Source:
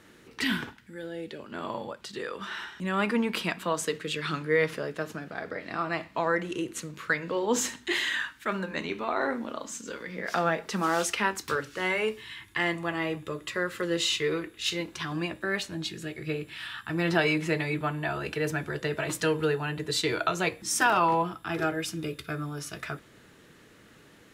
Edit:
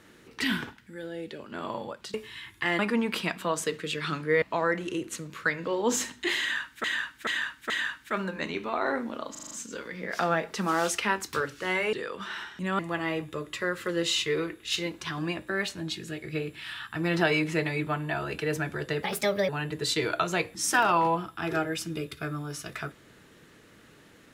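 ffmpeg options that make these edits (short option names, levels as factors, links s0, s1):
-filter_complex "[0:a]asplit=16[s0][s1][s2][s3][s4][s5][s6][s7][s8][s9][s10][s11][s12][s13][s14][s15];[s0]atrim=end=2.142[s16];[s1]atrim=start=12.078:end=12.732[s17];[s2]atrim=start=2.998:end=4.632[s18];[s3]atrim=start=6.058:end=8.482[s19];[s4]atrim=start=8.048:end=8.482[s20];[s5]atrim=start=8.048:end=8.482[s21];[s6]atrim=start=8.048:end=9.702[s22];[s7]atrim=start=9.658:end=9.702[s23];[s8]atrim=start=9.658:end=9.702[s24];[s9]atrim=start=9.658:end=9.702[s25];[s10]atrim=start=9.658:end=9.702[s26];[s11]atrim=start=9.658:end=12.082[s27];[s12]atrim=start=2.138:end=3.002[s28];[s13]atrim=start=12.728:end=18.974[s29];[s14]atrim=start=18.97:end=19.56,asetpts=PTS-STARTPTS,asetrate=56889,aresample=44100[s30];[s15]atrim=start=19.556[s31];[s16][s17]acrossfade=d=0.004:c1=hsin:c2=hsin[s32];[s32][s18]acrossfade=d=0.004:c1=hsin:c2=hsin[s33];[s33][s19]acrossfade=d=0.004:c1=hsin:c2=hsin[s34];[s34][s20]acrossfade=d=0.004:c1=hsin:c2=hsin[s35];[s35][s21]acrossfade=d=0.004:c1=hsin:c2=hsin[s36];[s36][s22]acrossfade=d=0.004:c1=hsin:c2=hsin[s37];[s37][s23]acrossfade=d=0.004:c1=hsin:c2=hsin[s38];[s38][s24]acrossfade=d=0.004:c1=hsin:c2=hsin[s39];[s39][s25]acrossfade=d=0.004:c1=hsin:c2=hsin[s40];[s40][s26]acrossfade=d=0.004:c1=hsin:c2=hsin[s41];[s41][s27]acrossfade=d=0.004:c1=hsin:c2=hsin[s42];[s42][s28]acrossfade=d=0.004:c1=hsin:c2=hsin[s43];[s43][s29]acrossfade=d=0.004:c1=hsin:c2=hsin[s44];[s44][s30]acrossfade=d=0.004:c1=hsin:c2=hsin[s45];[s45][s31]acrossfade=d=0.004:c1=hsin:c2=hsin"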